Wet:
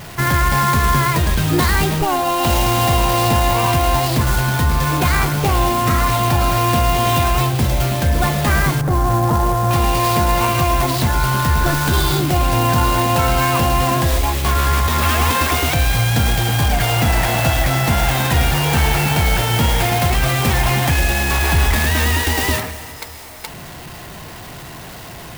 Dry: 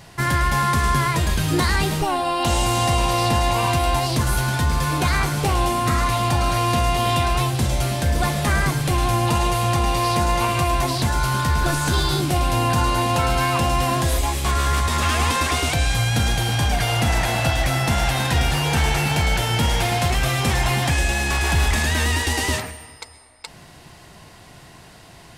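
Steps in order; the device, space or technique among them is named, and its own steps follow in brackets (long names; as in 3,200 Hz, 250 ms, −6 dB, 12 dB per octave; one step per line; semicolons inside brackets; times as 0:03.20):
0:08.81–0:09.71: inverse Chebyshev low-pass filter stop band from 3,200 Hz, stop band 40 dB
early CD player with a faulty converter (converter with a step at zero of −35 dBFS; converter with an unsteady clock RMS 0.036 ms)
level +3.5 dB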